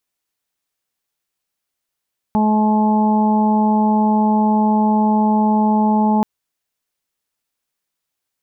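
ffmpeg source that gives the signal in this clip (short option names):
-f lavfi -i "aevalsrc='0.211*sin(2*PI*214*t)+0.0473*sin(2*PI*428*t)+0.0473*sin(2*PI*642*t)+0.133*sin(2*PI*856*t)+0.0224*sin(2*PI*1070*t)':d=3.88:s=44100"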